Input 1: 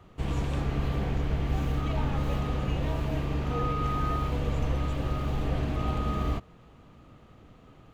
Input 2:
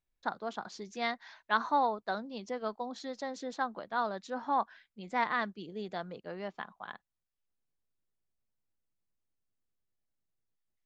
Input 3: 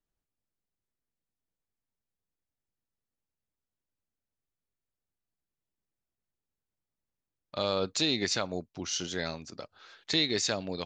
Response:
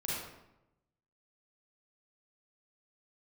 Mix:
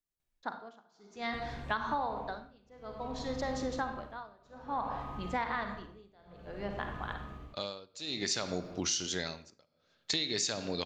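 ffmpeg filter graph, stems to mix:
-filter_complex "[0:a]acompressor=threshold=-40dB:ratio=2.5,highshelf=frequency=7700:gain=-5,adelay=1150,volume=-5dB[link_01];[1:a]adelay=200,volume=1dB,asplit=2[link_02][link_03];[link_03]volume=-5dB[link_04];[2:a]agate=range=-13dB:threshold=-46dB:ratio=16:detection=peak,highshelf=frequency=4000:gain=8.5,volume=3dB,asplit=2[link_05][link_06];[link_06]volume=-14dB[link_07];[3:a]atrim=start_sample=2205[link_08];[link_04][link_07]amix=inputs=2:normalize=0[link_09];[link_09][link_08]afir=irnorm=-1:irlink=0[link_10];[link_01][link_02][link_05][link_10]amix=inputs=4:normalize=0,tremolo=f=0.57:d=0.97,acompressor=threshold=-29dB:ratio=10"

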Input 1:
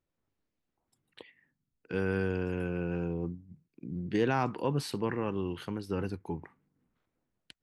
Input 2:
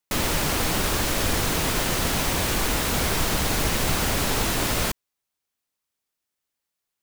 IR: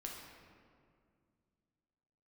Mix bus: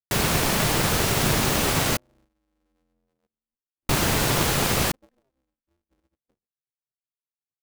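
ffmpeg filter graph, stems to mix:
-filter_complex "[0:a]asplit=2[link_01][link_02];[link_02]afreqshift=0.61[link_03];[link_01][link_03]amix=inputs=2:normalize=1,volume=-16dB[link_04];[1:a]volume=1.5dB,asplit=3[link_05][link_06][link_07];[link_05]atrim=end=1.97,asetpts=PTS-STARTPTS,afade=type=out:start_time=1.966:duration=0.004:curve=hsin[link_08];[link_06]atrim=start=1.97:end=3.89,asetpts=PTS-STARTPTS,volume=0[link_09];[link_07]atrim=start=3.89,asetpts=PTS-STARTPTS,afade=type=in:duration=0.004:curve=hsin[link_10];[link_08][link_09][link_10]concat=n=3:v=0:a=1[link_11];[link_04][link_11]amix=inputs=2:normalize=0,anlmdn=0.631,agate=range=-7dB:threshold=-58dB:ratio=16:detection=peak,aeval=exprs='val(0)*sgn(sin(2*PI*130*n/s))':channel_layout=same"

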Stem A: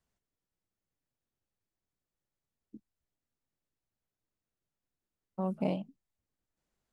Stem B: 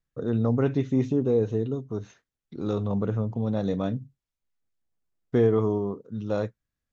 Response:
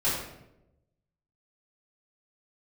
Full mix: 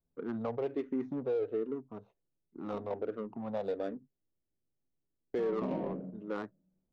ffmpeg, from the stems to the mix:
-filter_complex "[0:a]equalizer=frequency=310:width_type=o:width=1.3:gain=6.5,volume=-6dB,asplit=2[link_01][link_02];[link_02]volume=-9dB[link_03];[1:a]highpass=380,agate=range=-19dB:threshold=-48dB:ratio=16:detection=peak,asplit=2[link_04][link_05];[link_05]afreqshift=-1.3[link_06];[link_04][link_06]amix=inputs=2:normalize=1,volume=0.5dB[link_07];[2:a]atrim=start_sample=2205[link_08];[link_03][link_08]afir=irnorm=-1:irlink=0[link_09];[link_01][link_07][link_09]amix=inputs=3:normalize=0,adynamicsmooth=sensitivity=4:basefreq=810,alimiter=level_in=2dB:limit=-24dB:level=0:latency=1:release=65,volume=-2dB"

